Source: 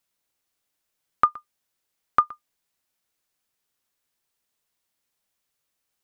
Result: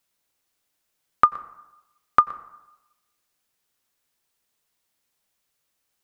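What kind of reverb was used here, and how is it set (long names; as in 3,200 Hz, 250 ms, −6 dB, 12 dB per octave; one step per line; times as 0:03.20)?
dense smooth reverb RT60 0.97 s, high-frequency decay 0.5×, pre-delay 80 ms, DRR 18 dB
level +3 dB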